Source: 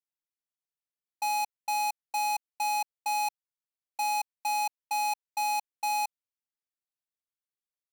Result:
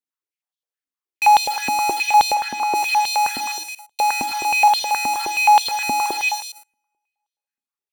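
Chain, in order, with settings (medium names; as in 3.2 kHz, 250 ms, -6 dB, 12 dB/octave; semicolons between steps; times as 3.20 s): on a send: repeats whose band climbs or falls 116 ms, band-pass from 1.5 kHz, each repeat 0.7 oct, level -9 dB; on the sum: two-slope reverb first 0.61 s, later 2.4 s, from -24 dB, DRR 10.5 dB; in parallel at -8.5 dB: fuzz box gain 56 dB, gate -55 dBFS; 2.33–2.74 s: on the sum: treble shelf 6.7 kHz -> 4.1 kHz -10.5 dB; step-sequenced high-pass 9.5 Hz 250–3500 Hz; trim -2 dB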